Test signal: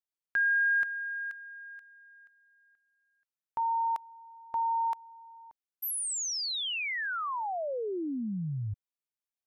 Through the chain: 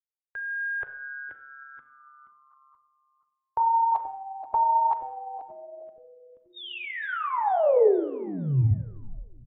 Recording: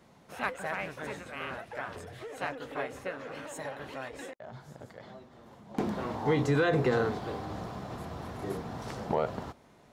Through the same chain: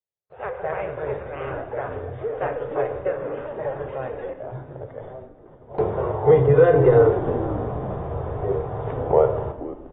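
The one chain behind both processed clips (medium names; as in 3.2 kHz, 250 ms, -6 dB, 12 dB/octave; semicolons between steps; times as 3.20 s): gate -51 dBFS, range -42 dB; FFT filter 130 Hz 0 dB, 240 Hz -28 dB, 420 Hz +3 dB, 1.1 kHz -9 dB, 4.1 kHz -23 dB, 12 kHz +3 dB; level rider gain up to 13 dB; frequency-shifting echo 479 ms, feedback 40%, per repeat -140 Hz, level -15.5 dB; Schroeder reverb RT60 0.84 s, combs from 30 ms, DRR 8.5 dB; AAC 16 kbps 32 kHz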